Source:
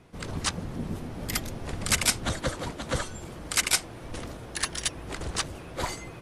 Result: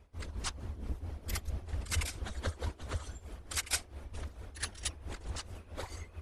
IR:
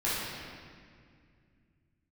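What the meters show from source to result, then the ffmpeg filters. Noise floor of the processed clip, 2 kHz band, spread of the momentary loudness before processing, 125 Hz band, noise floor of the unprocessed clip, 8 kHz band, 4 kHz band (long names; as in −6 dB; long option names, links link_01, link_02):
−56 dBFS, −11.0 dB, 14 LU, −4.0 dB, −43 dBFS, −11.0 dB, −11.0 dB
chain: -af "afftfilt=real='hypot(re,im)*cos(2*PI*random(0))':imag='hypot(re,im)*sin(2*PI*random(1))':win_size=512:overlap=0.75,lowshelf=frequency=100:width_type=q:width=3:gain=9,tremolo=f=4.5:d=0.73,volume=-2dB"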